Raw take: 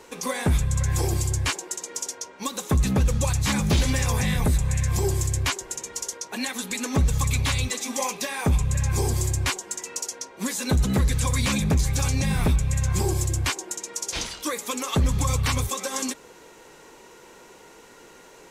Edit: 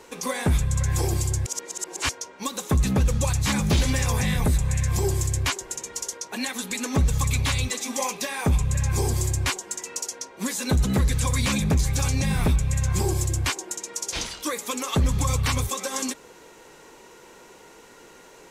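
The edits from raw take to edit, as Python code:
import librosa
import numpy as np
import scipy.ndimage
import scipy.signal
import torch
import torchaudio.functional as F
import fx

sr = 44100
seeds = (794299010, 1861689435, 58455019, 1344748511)

y = fx.edit(x, sr, fx.reverse_span(start_s=1.46, length_s=0.63), tone=tone)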